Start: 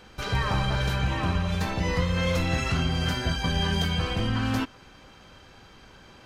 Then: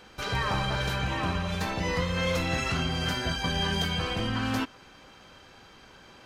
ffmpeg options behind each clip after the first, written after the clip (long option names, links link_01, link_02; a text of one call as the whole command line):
ffmpeg -i in.wav -af "lowshelf=frequency=160:gain=-7.5" out.wav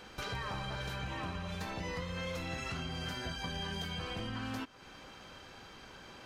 ffmpeg -i in.wav -af "acompressor=threshold=-40dB:ratio=3" out.wav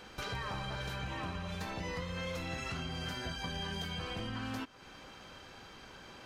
ffmpeg -i in.wav -af anull out.wav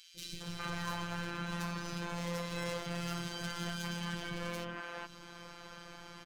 ffmpeg -i in.wav -filter_complex "[0:a]aeval=exprs='0.0178*(abs(mod(val(0)/0.0178+3,4)-2)-1)':channel_layout=same,acrossover=split=370|2900[link_01][link_02][link_03];[link_01]adelay=150[link_04];[link_02]adelay=410[link_05];[link_04][link_05][link_03]amix=inputs=3:normalize=0,afftfilt=real='hypot(re,im)*cos(PI*b)':imag='0':win_size=1024:overlap=0.75,volume=6.5dB" out.wav